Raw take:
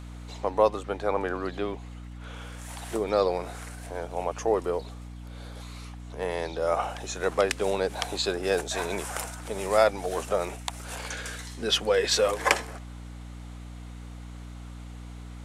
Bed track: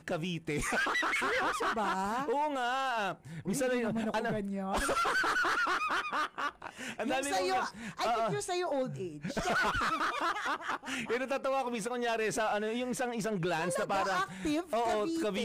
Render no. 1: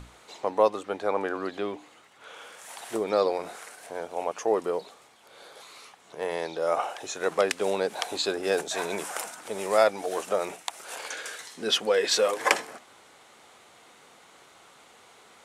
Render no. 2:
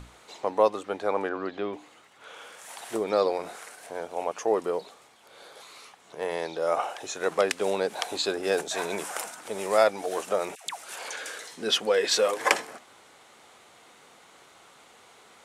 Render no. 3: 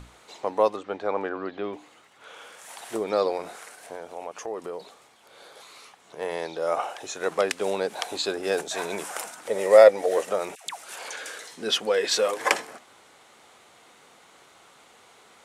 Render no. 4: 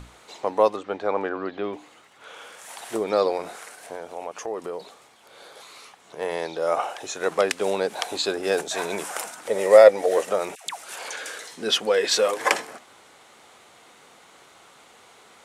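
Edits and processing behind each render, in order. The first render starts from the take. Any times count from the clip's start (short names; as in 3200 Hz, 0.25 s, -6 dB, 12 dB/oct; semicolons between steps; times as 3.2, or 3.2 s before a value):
notches 60/120/180/240/300 Hz
1.28–1.73 air absorption 130 m; 10.55–11.55 dispersion lows, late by 0.121 s, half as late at 780 Hz
0.76–1.64 air absorption 89 m; 3.95–4.8 compressor 2:1, threshold -35 dBFS; 9.47–10.3 small resonant body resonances 520/1900 Hz, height 13 dB, ringing for 25 ms
gain +2.5 dB; limiter -2 dBFS, peak gain reduction 2.5 dB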